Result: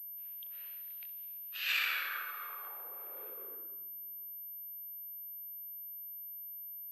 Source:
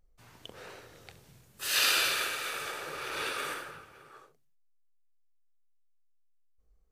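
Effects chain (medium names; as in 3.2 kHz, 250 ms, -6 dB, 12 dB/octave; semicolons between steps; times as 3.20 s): Doppler pass-by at 1.52 s, 22 m/s, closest 13 m; band-pass sweep 2.8 kHz -> 270 Hz, 1.55–3.98 s; class-D stage that switches slowly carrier 13 kHz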